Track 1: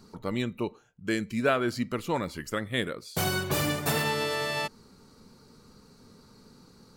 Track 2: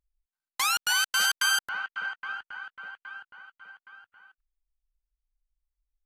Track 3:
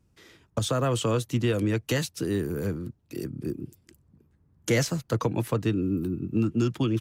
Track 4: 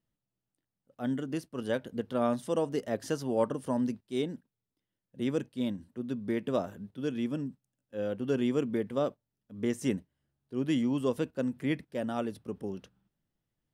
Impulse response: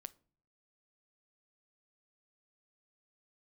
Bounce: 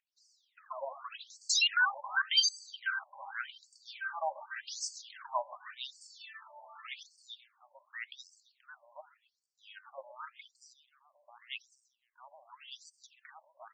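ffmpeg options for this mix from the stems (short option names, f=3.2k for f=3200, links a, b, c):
-filter_complex "[0:a]alimiter=limit=-21dB:level=0:latency=1:release=304,acontrast=37,adelay=2150,volume=-16.5dB,asplit=2[a][b];[b]volume=-8dB[c];[1:a]highshelf=f=6.2k:g=6,adelay=900,volume=0dB,asplit=2[d][e];[e]volume=-23dB[f];[2:a]aphaser=in_gain=1:out_gain=1:delay=4.4:decay=0.66:speed=1.7:type=triangular,volume=-9dB,asplit=3[g][h][i];[h]volume=-12dB[j];[3:a]equalizer=f=530:w=8:g=-6.5,adelay=1650,volume=2.5dB,asplit=2[k][l];[l]volume=-18dB[m];[i]apad=whole_len=402183[n];[a][n]sidechaincompress=threshold=-34dB:ratio=8:attack=39:release=425[o];[c][f][j][m]amix=inputs=4:normalize=0,aecho=0:1:130|260|390|520|650|780|910:1|0.47|0.221|0.104|0.0488|0.0229|0.0108[p];[o][d][g][k][p]amix=inputs=5:normalize=0,aphaser=in_gain=1:out_gain=1:delay=3.8:decay=0.53:speed=0.35:type=triangular,afftfilt=real='re*between(b*sr/1024,730*pow(6300/730,0.5+0.5*sin(2*PI*0.87*pts/sr))/1.41,730*pow(6300/730,0.5+0.5*sin(2*PI*0.87*pts/sr))*1.41)':imag='im*between(b*sr/1024,730*pow(6300/730,0.5+0.5*sin(2*PI*0.87*pts/sr))/1.41,730*pow(6300/730,0.5+0.5*sin(2*PI*0.87*pts/sr))*1.41)':win_size=1024:overlap=0.75"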